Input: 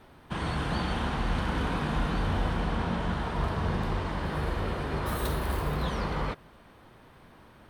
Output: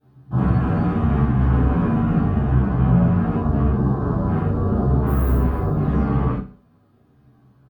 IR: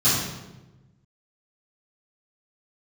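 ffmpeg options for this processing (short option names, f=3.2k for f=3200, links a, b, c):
-filter_complex "[0:a]aemphasis=mode=production:type=50fm,afwtdn=0.0158,tiltshelf=f=1.5k:g=9,alimiter=limit=-19dB:level=0:latency=1:release=24,aecho=1:1:61|122|183|244:0.224|0.0806|0.029|0.0104[a];[1:a]atrim=start_sample=2205,atrim=end_sample=3969[b];[a][b]afir=irnorm=-1:irlink=0,asplit=2[c][d];[d]adelay=10.9,afreqshift=-0.83[e];[c][e]amix=inputs=2:normalize=1,volume=-8.5dB"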